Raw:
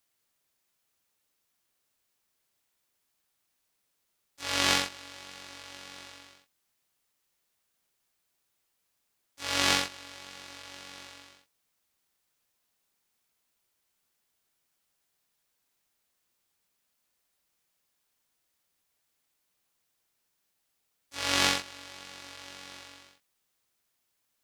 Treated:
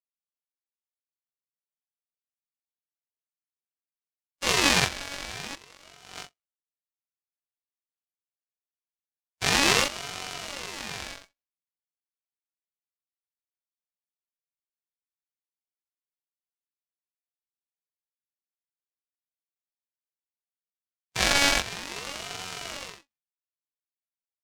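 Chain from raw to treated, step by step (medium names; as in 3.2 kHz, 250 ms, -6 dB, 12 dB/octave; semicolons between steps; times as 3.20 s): gate -48 dBFS, range -47 dB; 5.55–6.29 s: compressor with a negative ratio -55 dBFS, ratio -0.5; small resonant body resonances 490/1100 Hz, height 10 dB; loudness maximiser +11.5 dB; ring modulator with a swept carrier 1.5 kHz, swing 25%, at 0.49 Hz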